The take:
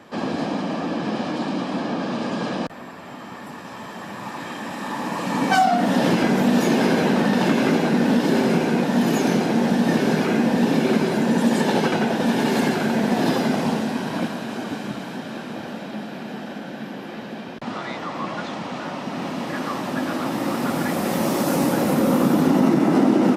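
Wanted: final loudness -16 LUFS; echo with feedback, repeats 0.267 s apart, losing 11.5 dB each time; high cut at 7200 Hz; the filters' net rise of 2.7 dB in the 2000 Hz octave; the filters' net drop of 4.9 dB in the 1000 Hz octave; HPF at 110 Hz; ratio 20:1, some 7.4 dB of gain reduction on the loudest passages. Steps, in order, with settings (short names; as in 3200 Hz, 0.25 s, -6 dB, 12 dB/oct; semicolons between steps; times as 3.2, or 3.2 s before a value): HPF 110 Hz; LPF 7200 Hz; bell 1000 Hz -8.5 dB; bell 2000 Hz +6.5 dB; compressor 20:1, threshold -21 dBFS; feedback echo 0.267 s, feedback 27%, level -11.5 dB; gain +11 dB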